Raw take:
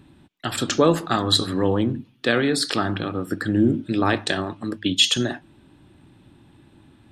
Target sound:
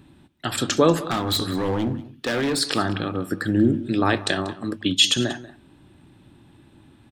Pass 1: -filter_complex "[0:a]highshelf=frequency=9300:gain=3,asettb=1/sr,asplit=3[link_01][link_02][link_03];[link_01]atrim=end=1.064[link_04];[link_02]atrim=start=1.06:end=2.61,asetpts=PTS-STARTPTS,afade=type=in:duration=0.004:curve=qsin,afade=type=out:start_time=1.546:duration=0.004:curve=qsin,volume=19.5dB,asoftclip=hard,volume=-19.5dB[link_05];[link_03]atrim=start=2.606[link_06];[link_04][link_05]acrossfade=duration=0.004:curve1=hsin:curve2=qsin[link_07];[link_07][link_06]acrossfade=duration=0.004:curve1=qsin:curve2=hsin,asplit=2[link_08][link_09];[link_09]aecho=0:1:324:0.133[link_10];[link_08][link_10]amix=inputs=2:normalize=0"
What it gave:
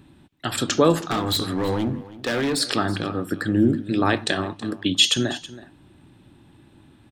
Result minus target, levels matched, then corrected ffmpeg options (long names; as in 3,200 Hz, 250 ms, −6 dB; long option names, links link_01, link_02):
echo 136 ms late
-filter_complex "[0:a]highshelf=frequency=9300:gain=3,asettb=1/sr,asplit=3[link_01][link_02][link_03];[link_01]atrim=end=1.064[link_04];[link_02]atrim=start=1.06:end=2.61,asetpts=PTS-STARTPTS,afade=type=in:duration=0.004:curve=qsin,afade=type=out:start_time=1.546:duration=0.004:curve=qsin,volume=19.5dB,asoftclip=hard,volume=-19.5dB[link_05];[link_03]atrim=start=2.606[link_06];[link_04][link_05]acrossfade=duration=0.004:curve1=hsin:curve2=qsin[link_07];[link_07][link_06]acrossfade=duration=0.004:curve1=qsin:curve2=hsin,asplit=2[link_08][link_09];[link_09]aecho=0:1:188:0.133[link_10];[link_08][link_10]amix=inputs=2:normalize=0"